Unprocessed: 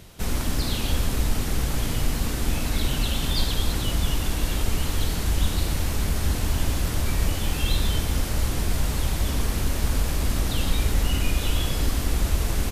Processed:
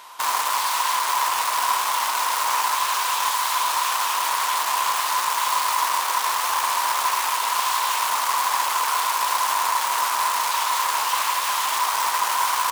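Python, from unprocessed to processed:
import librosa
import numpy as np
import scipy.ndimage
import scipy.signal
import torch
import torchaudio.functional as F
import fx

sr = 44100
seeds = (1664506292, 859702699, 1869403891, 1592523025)

y = (np.mod(10.0 ** (25.5 / 20.0) * x + 1.0, 2.0) - 1.0) / 10.0 ** (25.5 / 20.0)
y = fx.highpass_res(y, sr, hz=1000.0, q=11.0)
y = fx.doppler_dist(y, sr, depth_ms=0.16)
y = y * librosa.db_to_amplitude(4.5)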